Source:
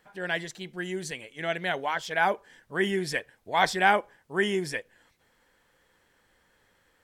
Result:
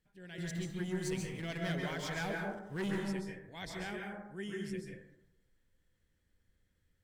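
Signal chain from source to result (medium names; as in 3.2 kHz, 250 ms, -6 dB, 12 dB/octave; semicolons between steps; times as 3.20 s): amplifier tone stack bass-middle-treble 10-0-1; 0.38–2.98 s: waveshaping leveller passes 3; plate-style reverb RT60 0.87 s, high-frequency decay 0.3×, pre-delay 120 ms, DRR -0.5 dB; trim +5 dB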